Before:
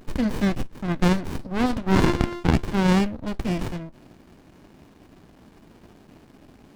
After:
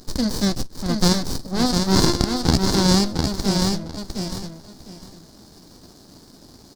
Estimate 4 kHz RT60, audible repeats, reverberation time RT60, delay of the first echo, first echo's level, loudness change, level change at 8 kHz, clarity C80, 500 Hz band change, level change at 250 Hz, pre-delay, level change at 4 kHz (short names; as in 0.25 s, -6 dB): none, 3, none, 0.704 s, -4.5 dB, +3.0 dB, +15.5 dB, none, +2.0 dB, +2.5 dB, none, +13.0 dB